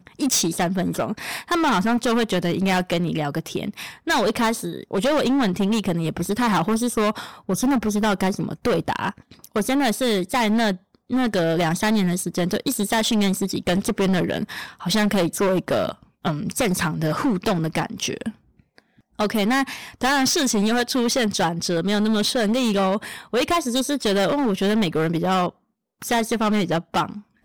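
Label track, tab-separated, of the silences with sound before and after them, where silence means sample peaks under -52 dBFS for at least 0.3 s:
25.550000	26.020000	silence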